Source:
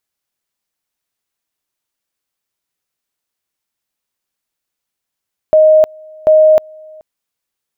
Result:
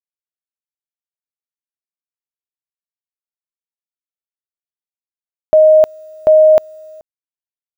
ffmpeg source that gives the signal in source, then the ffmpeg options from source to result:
-f lavfi -i "aevalsrc='pow(10,(-4-28.5*gte(mod(t,0.74),0.31))/20)*sin(2*PI*623*t)':d=1.48:s=44100"
-af "acrusher=bits=8:mix=0:aa=0.000001"

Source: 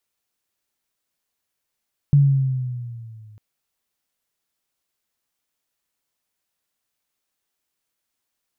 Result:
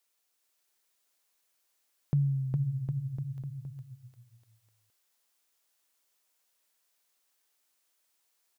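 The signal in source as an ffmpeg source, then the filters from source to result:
-f lavfi -i "aevalsrc='pow(10,(-9-34*t/1.25)/20)*sin(2*PI*144*1.25/(-5.5*log(2)/12)*(exp(-5.5*log(2)/12*t/1.25)-1))':d=1.25:s=44100"
-filter_complex "[0:a]bass=f=250:g=-13,treble=f=4k:g=3,asplit=2[a][b];[b]aecho=0:1:410|758.5|1055|1307|1521:0.631|0.398|0.251|0.158|0.1[c];[a][c]amix=inputs=2:normalize=0"

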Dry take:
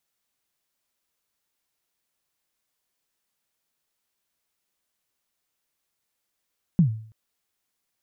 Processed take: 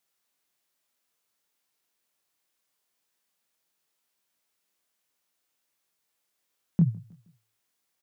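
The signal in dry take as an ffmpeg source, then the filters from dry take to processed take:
-f lavfi -i "aevalsrc='0.282*pow(10,-3*t/0.51)*sin(2*PI*(190*0.104/log(110/190)*(exp(log(110/190)*min(t,0.104)/0.104)-1)+110*max(t-0.104,0)))':d=0.33:s=44100"
-filter_complex "[0:a]highpass=f=160:p=1,asplit=2[a][b];[b]adelay=24,volume=-5.5dB[c];[a][c]amix=inputs=2:normalize=0,asplit=2[d][e];[e]adelay=157,lowpass=f=2k:p=1,volume=-24dB,asplit=2[f][g];[g]adelay=157,lowpass=f=2k:p=1,volume=0.41,asplit=2[h][i];[i]adelay=157,lowpass=f=2k:p=1,volume=0.41[j];[d][f][h][j]amix=inputs=4:normalize=0"

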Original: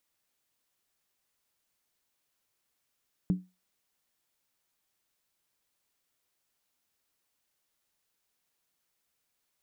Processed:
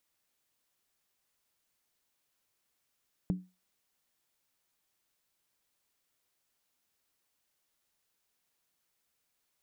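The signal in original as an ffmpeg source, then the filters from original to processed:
-f lavfi -i "aevalsrc='0.106*pow(10,-3*t/0.25)*sin(2*PI*183*t)+0.0282*pow(10,-3*t/0.198)*sin(2*PI*291.7*t)+0.0075*pow(10,-3*t/0.171)*sin(2*PI*390.9*t)+0.002*pow(10,-3*t/0.165)*sin(2*PI*420.2*t)+0.000531*pow(10,-3*t/0.153)*sin(2*PI*485.5*t)':d=0.63:s=44100"
-af "acompressor=threshold=-29dB:ratio=6"

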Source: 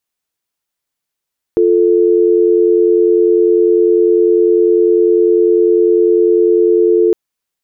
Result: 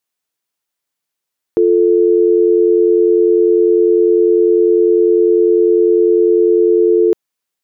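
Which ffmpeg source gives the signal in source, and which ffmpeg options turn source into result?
-f lavfi -i "aevalsrc='0.316*(sin(2*PI*350*t)+sin(2*PI*440*t))':d=5.56:s=44100"
-af "lowshelf=f=87:g=-11"

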